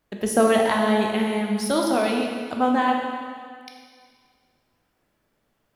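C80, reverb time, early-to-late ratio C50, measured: 3.5 dB, 2.0 s, 2.0 dB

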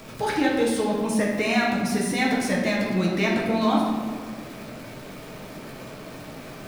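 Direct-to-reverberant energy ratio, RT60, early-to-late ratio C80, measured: -4.0 dB, 1.7 s, 3.5 dB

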